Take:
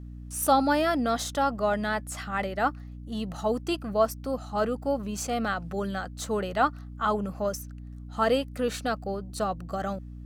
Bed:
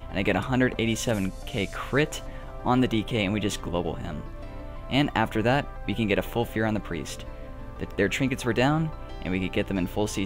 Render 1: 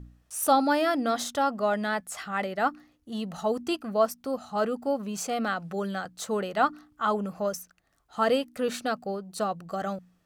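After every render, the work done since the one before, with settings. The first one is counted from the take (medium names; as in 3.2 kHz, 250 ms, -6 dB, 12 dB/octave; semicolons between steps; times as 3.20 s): de-hum 60 Hz, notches 5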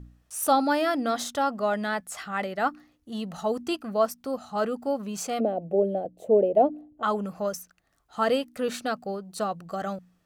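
5.40–7.03 s: FFT filter 190 Hz 0 dB, 330 Hz +9 dB, 630 Hz +12 dB, 1.3 kHz -28 dB, 2.6 kHz -14 dB, 4.8 kHz -28 dB, 11 kHz -15 dB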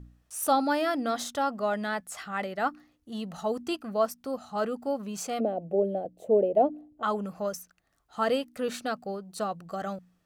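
trim -2.5 dB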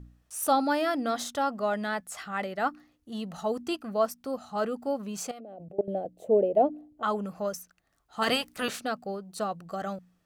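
5.31–5.88 s: level held to a coarse grid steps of 22 dB; 8.21–8.79 s: spectral peaks clipped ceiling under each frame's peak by 19 dB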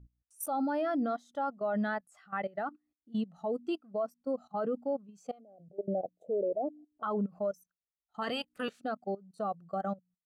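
level held to a coarse grid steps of 17 dB; spectral contrast expander 1.5:1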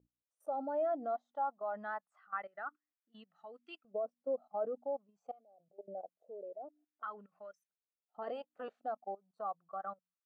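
LFO band-pass saw up 0.26 Hz 470–2300 Hz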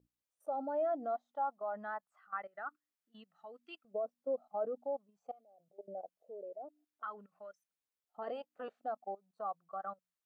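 1.50–2.65 s: dynamic bell 3.5 kHz, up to -4 dB, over -53 dBFS, Q 0.73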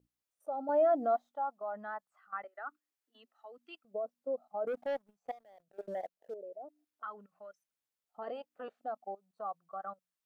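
0.69–1.29 s: gain +7 dB; 2.44–3.58 s: steep high-pass 240 Hz 96 dB/octave; 4.67–6.34 s: waveshaping leveller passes 2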